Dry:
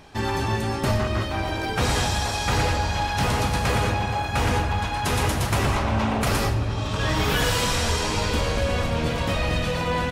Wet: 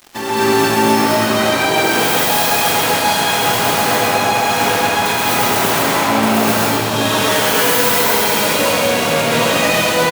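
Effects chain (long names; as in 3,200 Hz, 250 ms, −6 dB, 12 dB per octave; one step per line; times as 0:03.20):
stylus tracing distortion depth 0.28 ms
Bessel high-pass filter 240 Hz, order 4
high-shelf EQ 12,000 Hz +7.5 dB
in parallel at −1.5 dB: compressor whose output falls as the input rises −29 dBFS, ratio −0.5
on the sum: bit reduction 6 bits
on a send: single-tap delay 136 ms −3.5 dB
on the sum: reverb whose tail is shaped and stops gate 290 ms rising, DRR −6.5 dB
level −1 dB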